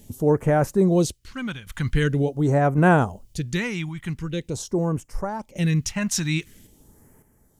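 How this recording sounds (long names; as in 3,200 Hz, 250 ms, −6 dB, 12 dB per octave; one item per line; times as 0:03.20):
a quantiser's noise floor 12 bits, dither triangular
phaser sweep stages 2, 0.45 Hz, lowest notch 410–3,500 Hz
sample-and-hold tremolo 1.8 Hz, depth 75%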